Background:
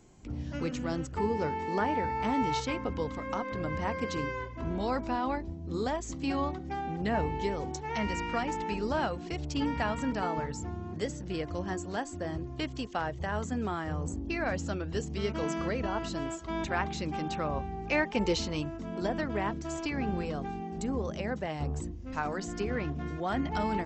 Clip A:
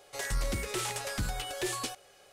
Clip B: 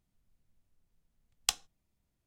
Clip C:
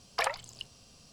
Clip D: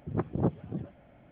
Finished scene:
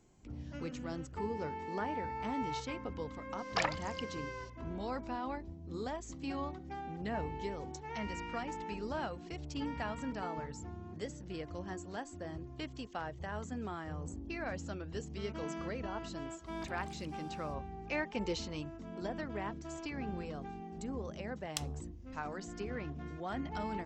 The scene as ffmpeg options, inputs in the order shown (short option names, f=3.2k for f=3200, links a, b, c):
-filter_complex "[3:a]asplit=2[a][b];[0:a]volume=-8dB[c];[a]aresample=16000,aresample=44100[d];[b]acompressor=threshold=-44dB:ratio=6:attack=3.2:release=140:knee=1:detection=peak[e];[d]atrim=end=1.12,asetpts=PTS-STARTPTS,volume=-2.5dB,afade=t=in:d=0.004:c=hsin,afade=t=out:st=1.116:d=0.004:c=hsin,adelay=3380[f];[e]atrim=end=1.12,asetpts=PTS-STARTPTS,volume=-8.5dB,afade=t=in:d=0.05,afade=t=out:st=1.07:d=0.05,adelay=16440[g];[2:a]atrim=end=2.26,asetpts=PTS-STARTPTS,volume=-10dB,afade=t=in:d=0.004:c=hsin,afade=t=out:st=2.256:d=0.004:c=hsin,adelay=20080[h];[c][f][g][h]amix=inputs=4:normalize=0"